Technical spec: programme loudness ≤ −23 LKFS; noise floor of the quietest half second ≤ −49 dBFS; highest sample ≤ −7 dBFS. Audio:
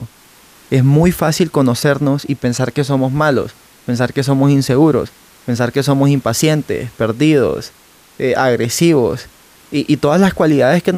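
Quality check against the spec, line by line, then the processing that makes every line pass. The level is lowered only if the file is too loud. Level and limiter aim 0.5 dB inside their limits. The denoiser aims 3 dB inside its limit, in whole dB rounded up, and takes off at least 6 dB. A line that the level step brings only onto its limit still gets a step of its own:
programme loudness −14.5 LKFS: out of spec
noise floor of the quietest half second −46 dBFS: out of spec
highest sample −2.0 dBFS: out of spec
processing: level −9 dB

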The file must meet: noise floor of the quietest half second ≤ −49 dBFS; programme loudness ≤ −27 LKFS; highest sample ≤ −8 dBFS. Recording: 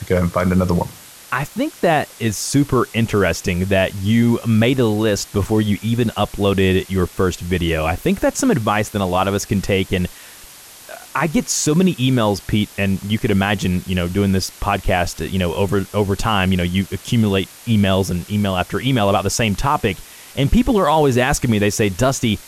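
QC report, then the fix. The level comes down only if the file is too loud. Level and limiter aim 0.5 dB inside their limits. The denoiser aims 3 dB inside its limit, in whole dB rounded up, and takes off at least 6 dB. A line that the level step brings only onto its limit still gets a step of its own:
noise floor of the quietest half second −41 dBFS: out of spec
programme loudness −18.0 LKFS: out of spec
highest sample −5.0 dBFS: out of spec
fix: level −9.5 dB

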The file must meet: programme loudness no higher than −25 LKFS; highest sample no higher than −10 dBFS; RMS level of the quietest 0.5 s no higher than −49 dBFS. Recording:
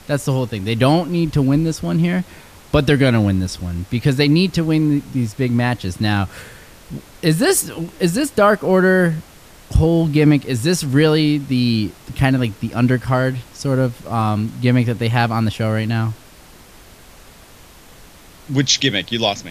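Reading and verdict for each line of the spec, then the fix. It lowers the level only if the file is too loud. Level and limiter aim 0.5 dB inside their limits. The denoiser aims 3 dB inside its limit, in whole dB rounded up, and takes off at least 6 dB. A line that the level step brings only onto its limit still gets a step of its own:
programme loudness −17.5 LKFS: out of spec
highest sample −3.0 dBFS: out of spec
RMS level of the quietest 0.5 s −43 dBFS: out of spec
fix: level −8 dB

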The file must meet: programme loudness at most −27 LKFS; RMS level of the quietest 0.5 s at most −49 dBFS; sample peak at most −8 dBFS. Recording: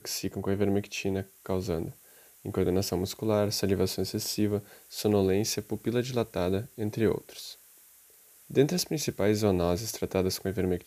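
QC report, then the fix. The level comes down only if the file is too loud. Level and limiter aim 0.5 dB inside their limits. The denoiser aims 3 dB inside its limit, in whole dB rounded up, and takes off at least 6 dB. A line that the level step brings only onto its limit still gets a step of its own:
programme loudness −29.5 LKFS: in spec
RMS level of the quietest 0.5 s −57 dBFS: in spec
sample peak −9.5 dBFS: in spec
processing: no processing needed

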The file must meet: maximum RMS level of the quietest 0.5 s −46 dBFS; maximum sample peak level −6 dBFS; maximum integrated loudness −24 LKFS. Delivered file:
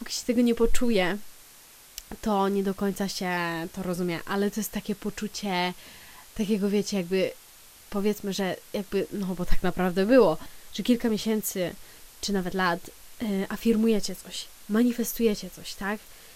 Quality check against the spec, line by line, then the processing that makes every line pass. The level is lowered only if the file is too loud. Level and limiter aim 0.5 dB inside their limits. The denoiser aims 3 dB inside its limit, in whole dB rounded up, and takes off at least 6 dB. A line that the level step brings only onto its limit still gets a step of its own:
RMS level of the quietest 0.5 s −51 dBFS: in spec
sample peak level −6.5 dBFS: in spec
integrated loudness −27.5 LKFS: in spec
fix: no processing needed

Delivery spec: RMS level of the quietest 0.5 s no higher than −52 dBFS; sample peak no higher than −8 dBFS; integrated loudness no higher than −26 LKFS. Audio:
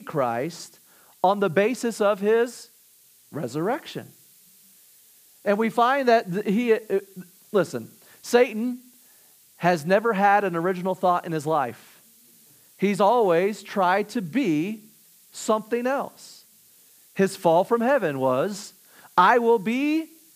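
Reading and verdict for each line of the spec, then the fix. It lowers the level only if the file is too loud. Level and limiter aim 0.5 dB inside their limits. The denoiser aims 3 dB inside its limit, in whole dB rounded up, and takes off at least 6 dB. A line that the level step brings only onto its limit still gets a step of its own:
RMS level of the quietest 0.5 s −56 dBFS: in spec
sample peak −4.5 dBFS: out of spec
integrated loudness −23.0 LKFS: out of spec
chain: level −3.5 dB
brickwall limiter −8.5 dBFS

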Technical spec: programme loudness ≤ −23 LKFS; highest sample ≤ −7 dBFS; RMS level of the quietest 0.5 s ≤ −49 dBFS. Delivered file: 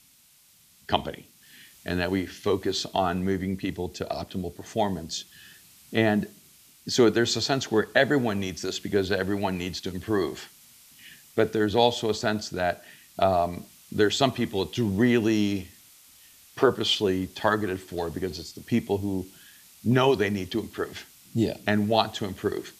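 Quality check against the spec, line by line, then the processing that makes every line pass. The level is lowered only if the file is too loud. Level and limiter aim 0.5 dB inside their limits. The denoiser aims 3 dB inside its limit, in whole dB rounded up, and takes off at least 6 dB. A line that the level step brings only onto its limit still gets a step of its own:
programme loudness −26.5 LKFS: in spec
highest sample −4.5 dBFS: out of spec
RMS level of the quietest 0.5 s −59 dBFS: in spec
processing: brickwall limiter −7.5 dBFS

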